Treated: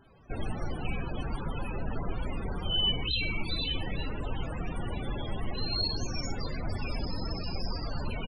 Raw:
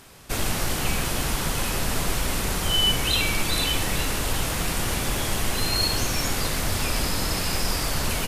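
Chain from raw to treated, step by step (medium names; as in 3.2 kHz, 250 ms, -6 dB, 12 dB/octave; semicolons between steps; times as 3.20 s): loudest bins only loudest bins 32; echo from a far wall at 15 m, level -28 dB; trim -6 dB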